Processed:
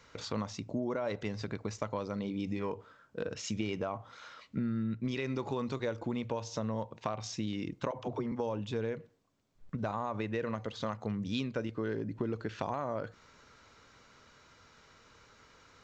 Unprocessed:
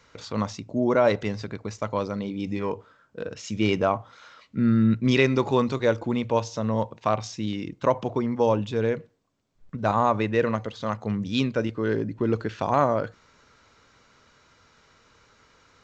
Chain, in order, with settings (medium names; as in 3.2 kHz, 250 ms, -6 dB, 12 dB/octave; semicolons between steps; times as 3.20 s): peak limiter -13 dBFS, peak gain reduction 6.5 dB; compression 6:1, threshold -30 dBFS, peak gain reduction 12.5 dB; 7.91–8.32 s: phase dispersion lows, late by 47 ms, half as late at 310 Hz; trim -1.5 dB